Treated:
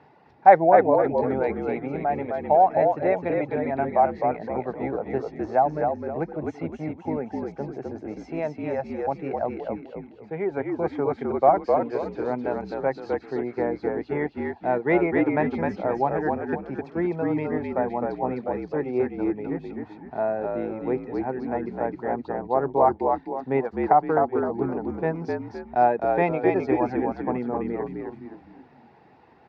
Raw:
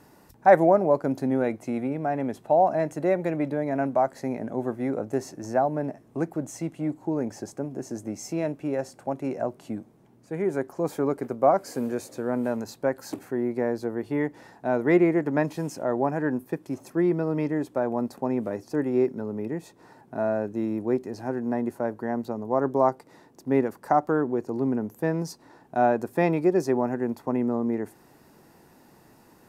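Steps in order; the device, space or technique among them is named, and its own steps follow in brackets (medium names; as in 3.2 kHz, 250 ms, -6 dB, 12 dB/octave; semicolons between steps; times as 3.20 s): reverb removal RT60 0.59 s; ten-band graphic EQ 125 Hz +7 dB, 250 Hz -10 dB, 500 Hz +7 dB, 8 kHz -5 dB; frequency-shifting delay pedal into a guitar cabinet (frequency-shifting echo 258 ms, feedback 40%, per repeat -52 Hz, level -3 dB; cabinet simulation 99–4000 Hz, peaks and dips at 110 Hz -6 dB, 250 Hz +5 dB, 560 Hz -5 dB, 810 Hz +7 dB, 2.2 kHz +6 dB); trim -1.5 dB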